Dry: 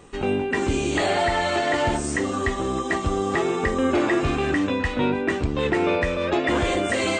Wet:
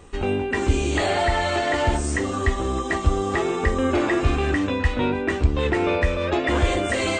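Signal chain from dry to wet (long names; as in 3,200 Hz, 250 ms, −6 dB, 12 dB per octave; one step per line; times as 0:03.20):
low shelf with overshoot 100 Hz +7 dB, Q 1.5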